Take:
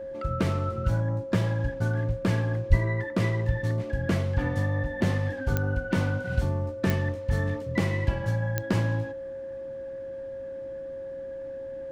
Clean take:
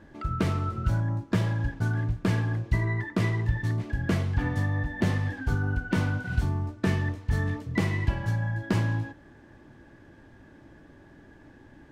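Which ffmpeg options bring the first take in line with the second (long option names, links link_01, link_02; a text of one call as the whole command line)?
ffmpeg -i in.wav -filter_complex "[0:a]adeclick=threshold=4,bandreject=frequency=540:width=30,asplit=3[link_01][link_02][link_03];[link_01]afade=type=out:start_time=2.69:duration=0.02[link_04];[link_02]highpass=frequency=140:width=0.5412,highpass=frequency=140:width=1.3066,afade=type=in:start_time=2.69:duration=0.02,afade=type=out:start_time=2.81:duration=0.02[link_05];[link_03]afade=type=in:start_time=2.81:duration=0.02[link_06];[link_04][link_05][link_06]amix=inputs=3:normalize=0" out.wav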